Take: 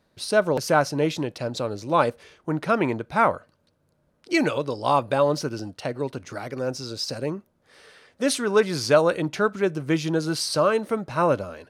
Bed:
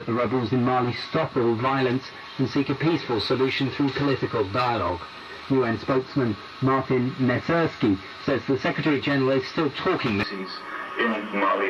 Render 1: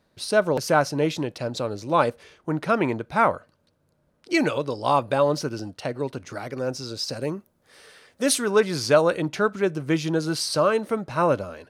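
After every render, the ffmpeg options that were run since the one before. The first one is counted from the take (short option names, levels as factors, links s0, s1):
-filter_complex "[0:a]asettb=1/sr,asplit=3[s0][s1][s2];[s0]atrim=end=7.214[s3];[s1]atrim=start=7.21:end=8.5,asetpts=PTS-STARTPTS,afade=t=in:d=0.004:c=qsin,afade=t=out:st=1.286:d=0.004:c=qsin,highshelf=f=8000:g=10[s4];[s2]atrim=start=8.496[s5];[s3][s4]acrossfade=d=0.004:c1=hsin:c2=qsin[s6];[s6][s5]acrossfade=d=0.004:c1=qsin:c2=hsin"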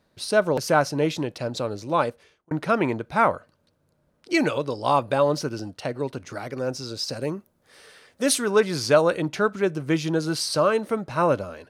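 -filter_complex "[0:a]asplit=2[s0][s1];[s0]atrim=end=2.51,asetpts=PTS-STARTPTS,afade=t=out:st=1.59:d=0.92:c=qsin[s2];[s1]atrim=start=2.51,asetpts=PTS-STARTPTS,afade=t=in:d=0.004:c=hsin[s3];[s2][s3]concat=n=2:v=0:a=1"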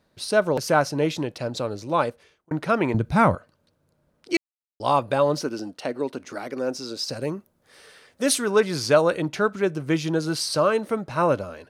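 -filter_complex "[0:a]asettb=1/sr,asplit=3[s0][s1][s2];[s0]atrim=end=2.944[s3];[s1]atrim=start=2.94:end=3.35,asetpts=PTS-STARTPTS,afade=t=in:d=0.004:c=qsin,afade=t=out:st=0.406:d=0.004:c=qsin,bass=f=250:g=15,treble=f=4000:g=5[s4];[s2]atrim=start=3.346[s5];[s3][s4]acrossfade=d=0.004:c1=hsin:c2=qsin[s6];[s6][s5]acrossfade=d=0.004:c1=qsin:c2=hsin,asettb=1/sr,asplit=3[s7][s8][s9];[s7]atrim=end=5.404[s10];[s8]atrim=start=5.4:end=7.08,asetpts=PTS-STARTPTS,afade=t=in:d=0.004:c=qsin,afade=t=out:st=1.676:d=0.004:c=qsin,lowshelf=f=170:t=q:w=1.5:g=-9.5[s11];[s9]atrim=start=7.076[s12];[s10][s11]acrossfade=d=0.004:c1=hsin:c2=qsin[s13];[s13][s12]acrossfade=d=0.004:c1=qsin:c2=hsin,asplit=3[s14][s15][s16];[s14]atrim=end=4.37,asetpts=PTS-STARTPTS,afade=t=out:st=4.366:d=0.004:c=hsin[s17];[s15]atrim=start=4.37:end=4.8,asetpts=PTS-STARTPTS,volume=0[s18];[s16]atrim=start=4.8,asetpts=PTS-STARTPTS,afade=t=in:d=0.004:c=hsin[s19];[s17][s18][s19]concat=n=3:v=0:a=1"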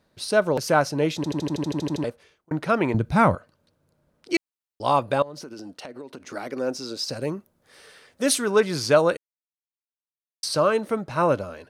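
-filter_complex "[0:a]asettb=1/sr,asplit=3[s0][s1][s2];[s0]atrim=end=5.224[s3];[s1]atrim=start=5.22:end=6.28,asetpts=PTS-STARTPTS,afade=t=in:d=0.004:c=qsin,afade=t=out:st=1.056:d=0.004:c=qsin,acompressor=threshold=0.02:ratio=12:attack=3.2:release=140:knee=1:detection=peak[s4];[s2]atrim=start=6.276[s5];[s3][s4]acrossfade=d=0.004:c1=hsin:c2=qsin[s6];[s6][s5]acrossfade=d=0.004:c1=qsin:c2=hsin,asplit=14[s7][s8][s9][s10][s11][s12][s13][s14][s15][s16][s17][s18][s19][s20];[s7]atrim=end=1.242[s21];[s8]atrim=start=1.158:end=1.242[s22];[s9]atrim=start=1.158:end=1.242[s23];[s10]atrim=start=1.158:end=1.242[s24];[s11]atrim=start=1.158:end=1.242[s25];[s12]atrim=start=1.158:end=1.242[s26];[s13]atrim=start=1.158:end=1.242[s27];[s14]atrim=start=1.158:end=1.242[s28];[s15]atrim=start=1.158:end=1.242[s29];[s16]atrim=start=1.158:end=1.242[s30];[s17]atrim=start=1.158:end=1.242[s31];[s18]atrim=start=2.038:end=9.17,asetpts=PTS-STARTPTS,afade=t=out:st=7.128:d=0.004:c=hsin[s32];[s19]atrim=start=9.17:end=10.43,asetpts=PTS-STARTPTS,volume=0[s33];[s20]atrim=start=10.43,asetpts=PTS-STARTPTS,afade=t=in:d=0.004:c=hsin[s34];[s21][s22]acrossfade=d=0.004:c1=hsin:c2=hsin[s35];[s35][s23]acrossfade=d=0.004:c1=hsin:c2=hsin[s36];[s36][s24]acrossfade=d=0.004:c1=hsin:c2=hsin[s37];[s37][s25]acrossfade=d=0.004:c1=hsin:c2=hsin[s38];[s38][s26]acrossfade=d=0.004:c1=hsin:c2=hsin[s39];[s39][s27]acrossfade=d=0.004:c1=hsin:c2=hsin[s40];[s40][s28]acrossfade=d=0.004:c1=hsin:c2=hsin[s41];[s41][s29]acrossfade=d=0.004:c1=hsin:c2=hsin[s42];[s42][s30]acrossfade=d=0.004:c1=hsin:c2=hsin[s43];[s43][s31]acrossfade=d=0.004:c1=hsin:c2=hsin[s44];[s32][s33][s34]concat=n=3:v=0:a=1[s45];[s44][s45]acrossfade=d=0.004:c1=hsin:c2=hsin"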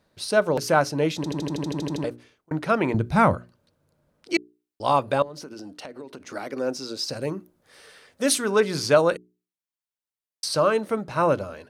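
-af "bandreject=f=60:t=h:w=6,bandreject=f=120:t=h:w=6,bandreject=f=180:t=h:w=6,bandreject=f=240:t=h:w=6,bandreject=f=300:t=h:w=6,bandreject=f=360:t=h:w=6,bandreject=f=420:t=h:w=6"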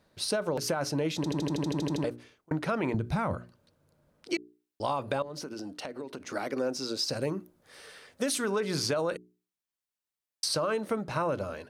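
-af "alimiter=limit=0.168:level=0:latency=1:release=29,acompressor=threshold=0.0501:ratio=6"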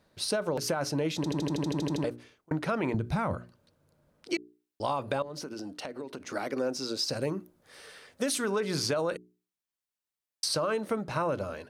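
-af anull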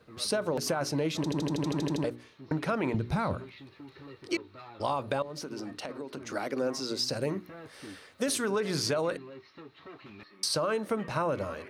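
-filter_complex "[1:a]volume=0.0562[s0];[0:a][s0]amix=inputs=2:normalize=0"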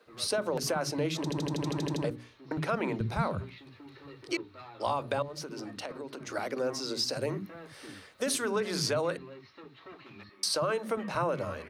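-filter_complex "[0:a]acrossover=split=250[s0][s1];[s0]adelay=60[s2];[s2][s1]amix=inputs=2:normalize=0"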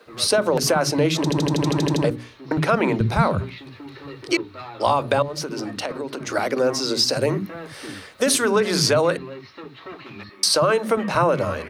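-af "volume=3.76"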